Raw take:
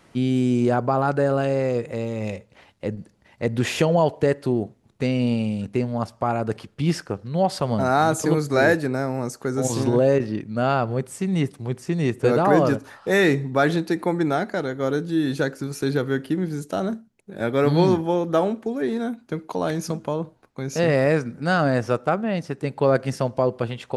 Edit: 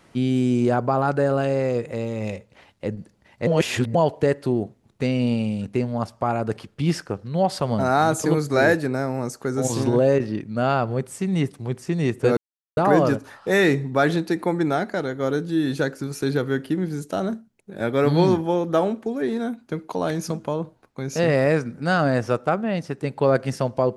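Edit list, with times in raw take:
0:03.47–0:03.95: reverse
0:12.37: splice in silence 0.40 s

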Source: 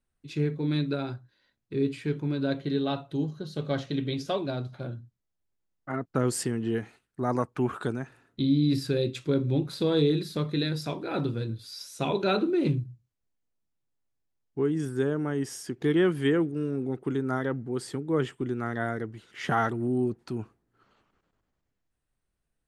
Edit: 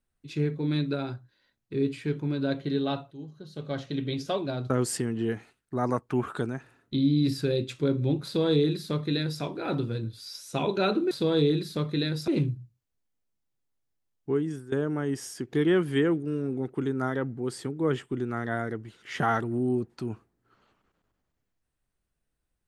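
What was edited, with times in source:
0:03.11–0:04.15: fade in, from −16 dB
0:04.70–0:06.16: remove
0:09.71–0:10.88: duplicate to 0:12.57
0:14.65–0:15.01: fade out, to −17 dB

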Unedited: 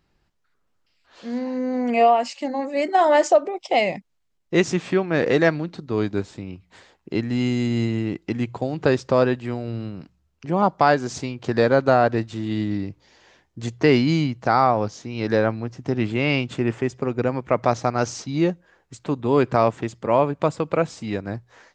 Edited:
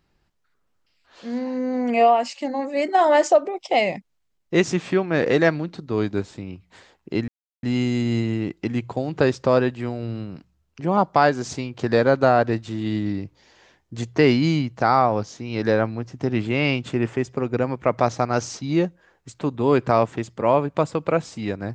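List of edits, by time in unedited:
0:07.28: splice in silence 0.35 s

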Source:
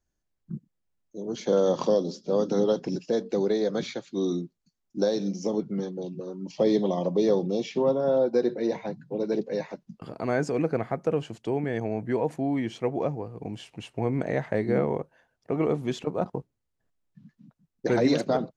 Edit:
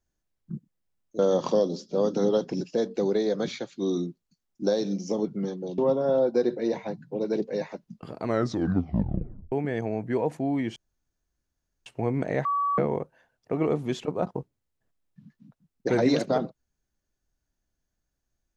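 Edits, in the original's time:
0:01.19–0:01.54: remove
0:06.13–0:07.77: remove
0:10.21: tape stop 1.30 s
0:12.75–0:13.85: fill with room tone
0:14.44–0:14.77: beep over 1,140 Hz −22.5 dBFS

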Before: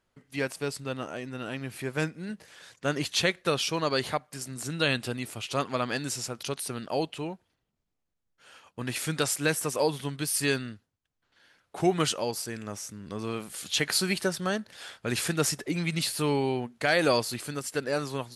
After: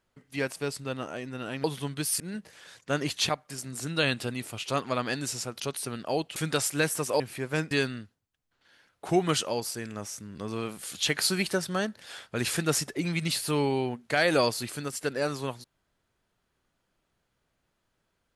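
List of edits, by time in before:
0:01.64–0:02.15: swap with 0:09.86–0:10.42
0:03.24–0:04.12: remove
0:07.19–0:09.02: remove

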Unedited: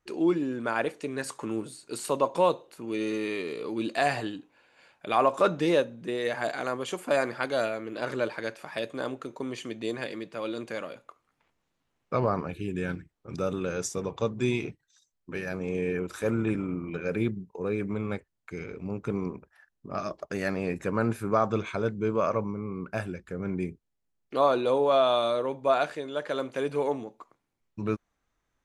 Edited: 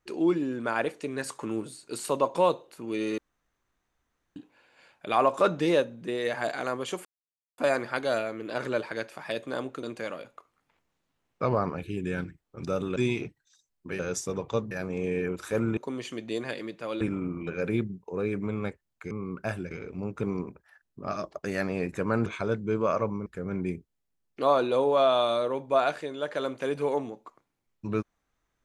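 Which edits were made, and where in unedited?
0:03.18–0:04.36: fill with room tone
0:07.05: splice in silence 0.53 s
0:09.30–0:10.54: move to 0:16.48
0:13.67–0:14.39: move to 0:15.42
0:21.13–0:21.60: remove
0:22.60–0:23.20: move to 0:18.58

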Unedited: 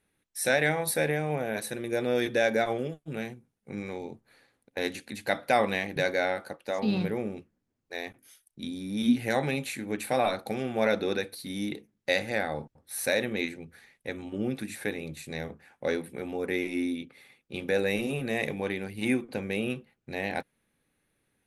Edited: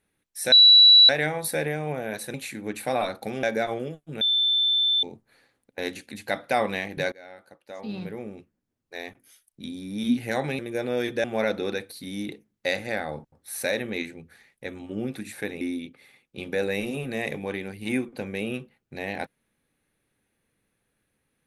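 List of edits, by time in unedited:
0:00.52: insert tone 3,930 Hz −9.5 dBFS 0.57 s
0:01.77–0:02.42: swap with 0:09.58–0:10.67
0:03.20–0:04.02: beep over 3,540 Hz −19 dBFS
0:06.11–0:08.06: fade in, from −24 dB
0:15.04–0:16.77: remove

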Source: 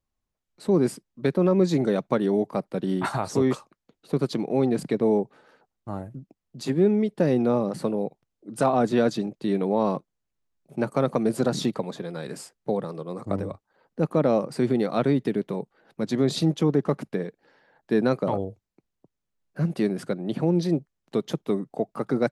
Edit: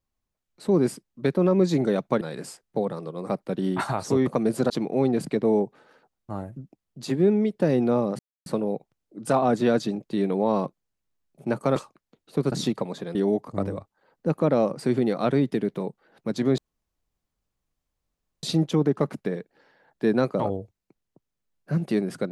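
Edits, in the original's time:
0:02.21–0:02.54: swap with 0:12.13–0:13.21
0:03.52–0:04.28: swap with 0:11.07–0:11.50
0:07.77: splice in silence 0.27 s
0:16.31: splice in room tone 1.85 s

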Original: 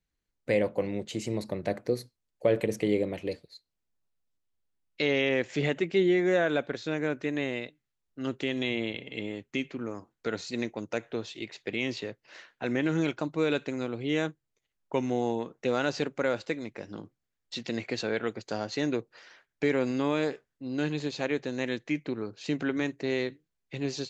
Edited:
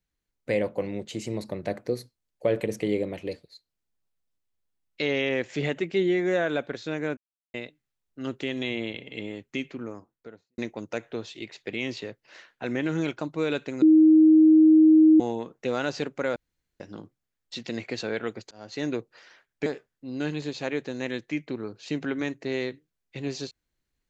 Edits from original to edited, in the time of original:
0:07.17–0:07.54: silence
0:09.71–0:10.58: fade out and dull
0:13.82–0:15.20: beep over 314 Hz −12 dBFS
0:16.36–0:16.80: fill with room tone
0:18.51–0:18.86: fade in
0:19.66–0:20.24: remove

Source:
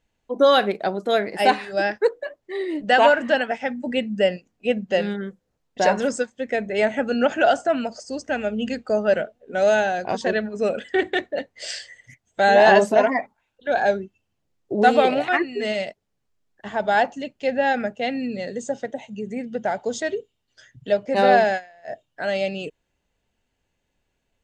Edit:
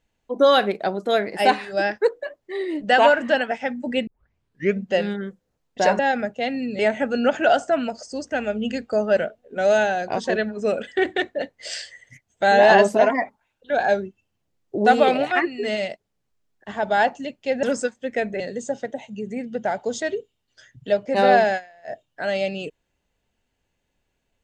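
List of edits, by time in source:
0:04.07: tape start 0.76 s
0:05.99–0:06.76: swap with 0:17.60–0:18.40

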